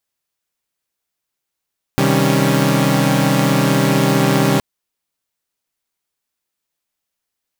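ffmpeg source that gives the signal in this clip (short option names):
-f lavfi -i "aevalsrc='0.168*((2*mod(130.81*t,1)-1)+(2*mod(155.56*t,1)-1)+(2*mod(196*t,1)-1)+(2*mod(277.18*t,1)-1))':d=2.62:s=44100"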